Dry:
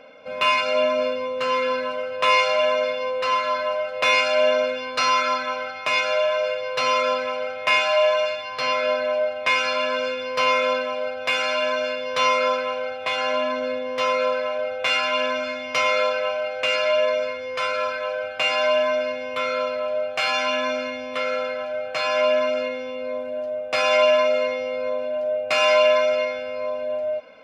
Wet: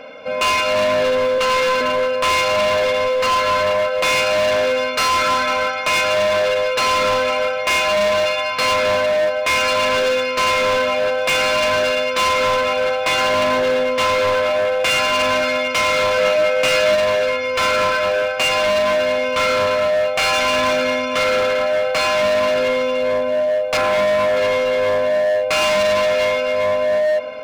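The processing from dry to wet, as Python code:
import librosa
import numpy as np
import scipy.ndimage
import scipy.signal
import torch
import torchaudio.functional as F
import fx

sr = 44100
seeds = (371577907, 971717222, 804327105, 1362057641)

y = fx.highpass(x, sr, hz=690.0, slope=6, at=(1.38, 1.81))
y = fx.band_shelf(y, sr, hz=4300.0, db=-15.5, octaves=1.7, at=(23.77, 24.37))
y = fx.rider(y, sr, range_db=3, speed_s=0.5)
y = fx.echo_heads(y, sr, ms=115, heads='all three', feedback_pct=51, wet_db=-18)
y = np.clip(10.0 ** (23.0 / 20.0) * y, -1.0, 1.0) / 10.0 ** (23.0 / 20.0)
y = fx.doubler(y, sr, ms=16.0, db=-5.0, at=(16.16, 16.95))
y = y * librosa.db_to_amplitude(8.5)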